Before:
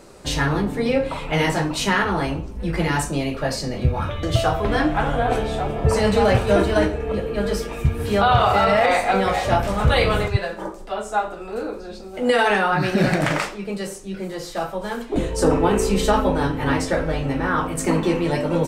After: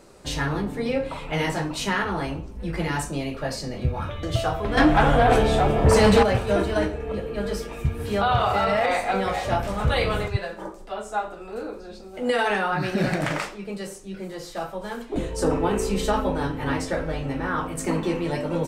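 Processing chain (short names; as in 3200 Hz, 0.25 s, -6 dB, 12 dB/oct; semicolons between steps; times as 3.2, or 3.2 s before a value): 4.77–6.23 sine folder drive 6 dB, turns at -5.5 dBFS; gain -5 dB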